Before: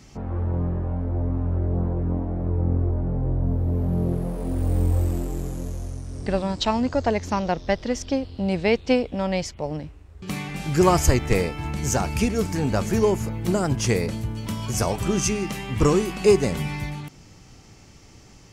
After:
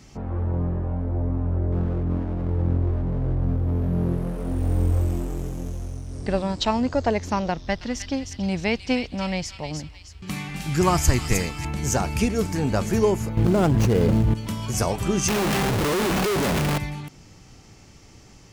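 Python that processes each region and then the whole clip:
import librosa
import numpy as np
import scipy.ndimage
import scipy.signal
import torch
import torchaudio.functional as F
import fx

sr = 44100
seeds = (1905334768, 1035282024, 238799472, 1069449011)

y = fx.chain(x, sr, fx.lower_of_two(delay_ms=0.35),
    fx.high_shelf(hz=8600.0, db=-4.5), at=(1.72, 6.11))
y = fx.chain(y, sr, fx.peak_eq(hz=480.0, db=-7.5, octaves=0.93),
    fx.echo_wet_highpass(ms=310, feedback_pct=37, hz=2700.0, wet_db=-3.5), at=(7.5, 11.65))
y = fx.chain(y, sr, fx.median_filter(points=25),
    fx.env_flatten(amount_pct=100), at=(13.37, 14.34))
y = fx.chain(y, sr, fx.low_shelf(hz=77.0, db=-9.5),
    fx.schmitt(flips_db=-35.5), at=(15.28, 16.78))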